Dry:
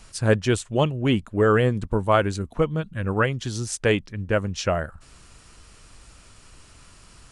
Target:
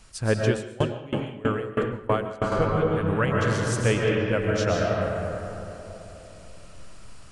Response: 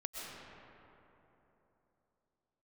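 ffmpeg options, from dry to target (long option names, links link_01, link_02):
-filter_complex "[1:a]atrim=start_sample=2205[link_01];[0:a][link_01]afir=irnorm=-1:irlink=0,asettb=1/sr,asplit=3[link_02][link_03][link_04];[link_02]atrim=end=0.484[link_05];[link_03]atrim=start=0.48:end=2.52,asetpts=PTS-STARTPTS,afade=type=in:duration=0.004:curve=qsin,afade=type=out:start_time=2.036:duration=0.004:curve=qsin,aeval=exprs='val(0)*pow(10,-24*if(lt(mod(3.1*n/s,1),2*abs(3.1)/1000),1-mod(3.1*n/s,1)/(2*abs(3.1)/1000),(mod(3.1*n/s,1)-2*abs(3.1)/1000)/(1-2*abs(3.1)/1000))/20)':channel_layout=same[link_06];[link_04]atrim=start=2.516[link_07];[link_05][link_06]acrossfade=duration=0.004:curve1=hsin:curve2=qsin[link_08];[link_08][link_07]acrossfade=duration=0.004:curve1=qsin:curve2=hsin"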